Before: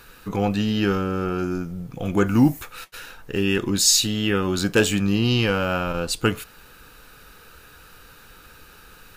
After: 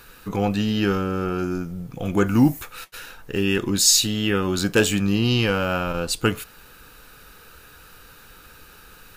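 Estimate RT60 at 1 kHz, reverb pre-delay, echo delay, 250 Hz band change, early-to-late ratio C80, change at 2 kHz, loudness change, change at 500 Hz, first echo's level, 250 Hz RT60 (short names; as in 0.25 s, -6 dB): none, none, none, 0.0 dB, none, 0.0 dB, +0.5 dB, 0.0 dB, none, none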